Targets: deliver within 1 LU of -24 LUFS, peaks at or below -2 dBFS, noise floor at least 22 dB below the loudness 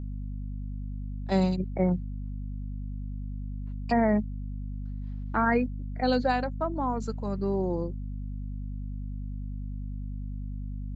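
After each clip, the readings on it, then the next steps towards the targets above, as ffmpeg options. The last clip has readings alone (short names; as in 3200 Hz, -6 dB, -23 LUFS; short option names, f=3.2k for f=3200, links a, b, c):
hum 50 Hz; harmonics up to 250 Hz; hum level -32 dBFS; loudness -31.0 LUFS; peak -12.5 dBFS; loudness target -24.0 LUFS
-> -af "bandreject=f=50:t=h:w=4,bandreject=f=100:t=h:w=4,bandreject=f=150:t=h:w=4,bandreject=f=200:t=h:w=4,bandreject=f=250:t=h:w=4"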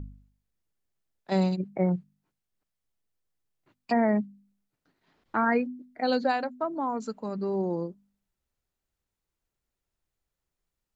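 hum none; loudness -28.5 LUFS; peak -13.0 dBFS; loudness target -24.0 LUFS
-> -af "volume=4.5dB"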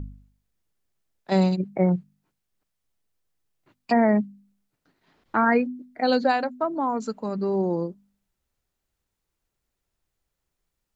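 loudness -24.0 LUFS; peak -8.5 dBFS; noise floor -82 dBFS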